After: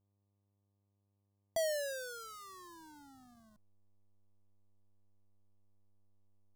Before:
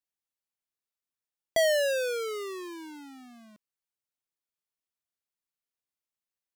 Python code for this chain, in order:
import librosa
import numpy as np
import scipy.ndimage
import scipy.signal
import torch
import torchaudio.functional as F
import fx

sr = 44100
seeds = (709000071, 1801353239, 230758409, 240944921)

y = fx.delta_hold(x, sr, step_db=-55.0)
y = fx.fixed_phaser(y, sr, hz=1000.0, stages=4)
y = fx.dmg_buzz(y, sr, base_hz=100.0, harmonics=12, level_db=-74.0, tilt_db=-8, odd_only=False)
y = y * 10.0 ** (-6.0 / 20.0)